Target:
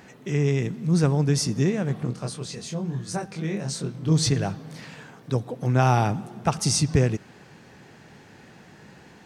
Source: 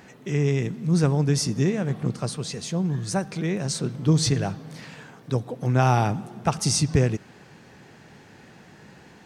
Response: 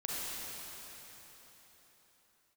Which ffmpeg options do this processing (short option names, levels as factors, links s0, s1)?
-filter_complex "[0:a]asplit=3[s0][s1][s2];[s0]afade=t=out:st=2.05:d=0.02[s3];[s1]flanger=delay=22.5:depth=3.2:speed=1.3,afade=t=in:st=2.05:d=0.02,afade=t=out:st=4.11:d=0.02[s4];[s2]afade=t=in:st=4.11:d=0.02[s5];[s3][s4][s5]amix=inputs=3:normalize=0"